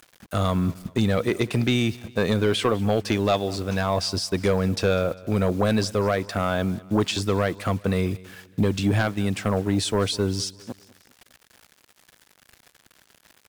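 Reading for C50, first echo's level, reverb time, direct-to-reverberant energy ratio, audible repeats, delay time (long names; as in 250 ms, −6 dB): no reverb audible, −21.0 dB, no reverb audible, no reverb audible, 2, 200 ms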